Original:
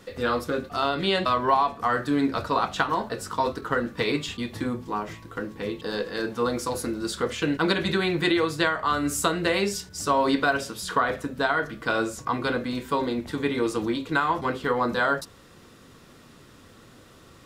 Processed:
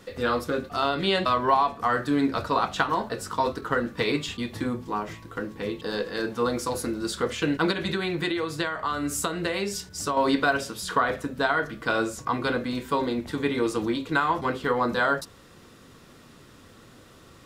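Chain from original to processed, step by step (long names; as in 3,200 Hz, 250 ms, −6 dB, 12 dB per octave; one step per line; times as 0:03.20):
0:07.70–0:10.17: downward compressor, threshold −24 dBFS, peak gain reduction 7 dB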